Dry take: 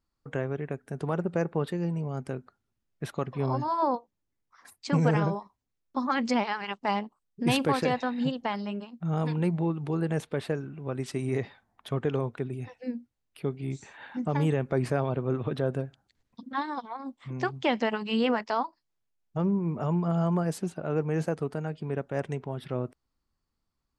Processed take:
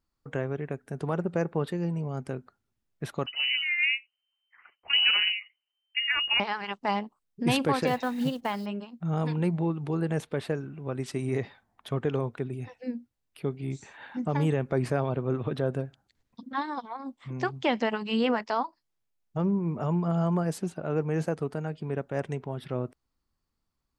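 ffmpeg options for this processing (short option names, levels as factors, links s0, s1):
-filter_complex "[0:a]asettb=1/sr,asplit=3[s0][s1][s2];[s0]atrim=end=3.264[s3];[s1]atrim=start=3.26:end=6.4,asetpts=PTS-STARTPTS,afade=t=in:d=0.004:c=qsin,afade=t=out:st=3.136:d=0.004:c=qsin,lowpass=f=2600:t=q:w=0.5098,lowpass=f=2600:t=q:w=0.6013,lowpass=f=2600:t=q:w=0.9,lowpass=f=2600:t=q:w=2.563,afreqshift=-3100[s4];[s2]atrim=start=6.396[s5];[s3][s4]acrossfade=d=0.004:c1=hsin:c2=qsin[s6];[s6][s5]acrossfade=d=0.004:c1=qsin:c2=hsin,asettb=1/sr,asplit=3[s7][s8][s9];[s7]atrim=end=7.874[s10];[s8]atrim=start=7.87:end=8.66,asetpts=PTS-STARTPTS,afade=t=in:d=0.004:c=qsin,afade=t=out:st=0.786:d=0.004:c=qsin,acrusher=bits=6:mode=log:mix=0:aa=0.000001[s11];[s9]atrim=start=8.656[s12];[s10][s11]acrossfade=d=0.004:c1=hsin:c2=qsin[s13];[s13][s12]acrossfade=d=0.004:c1=qsin:c2=hsin"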